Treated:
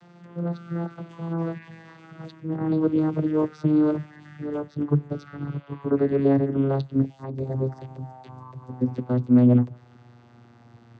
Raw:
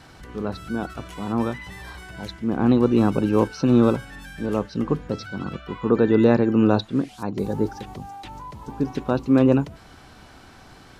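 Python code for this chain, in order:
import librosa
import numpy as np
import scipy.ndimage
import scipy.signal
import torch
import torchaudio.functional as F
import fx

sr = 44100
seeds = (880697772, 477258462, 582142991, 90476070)

y = fx.vocoder_glide(x, sr, note=53, semitones=-7)
y = y * librosa.db_to_amplitude(-1.5)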